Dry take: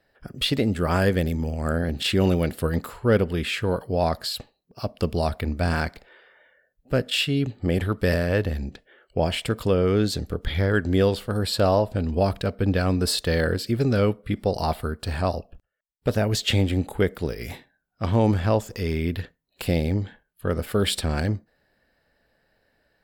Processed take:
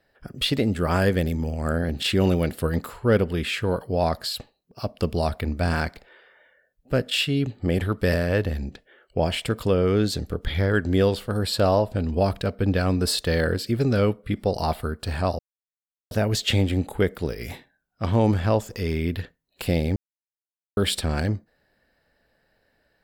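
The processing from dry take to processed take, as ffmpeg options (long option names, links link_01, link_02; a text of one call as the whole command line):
ffmpeg -i in.wav -filter_complex "[0:a]asplit=5[link_01][link_02][link_03][link_04][link_05];[link_01]atrim=end=15.39,asetpts=PTS-STARTPTS,afade=type=out:start_time=15.386:duration=0.004:curve=hsin[link_06];[link_02]atrim=start=15.39:end=16.11,asetpts=PTS-STARTPTS,volume=0[link_07];[link_03]atrim=start=16.11:end=19.96,asetpts=PTS-STARTPTS,afade=type=in:duration=0.004:curve=hsin,afade=type=out:start_time=3.846:duration=0.004:curve=hsin[link_08];[link_04]atrim=start=19.96:end=20.77,asetpts=PTS-STARTPTS,volume=0[link_09];[link_05]atrim=start=20.77,asetpts=PTS-STARTPTS,afade=type=in:duration=0.004:curve=hsin[link_10];[link_06][link_07][link_08][link_09][link_10]concat=n=5:v=0:a=1" out.wav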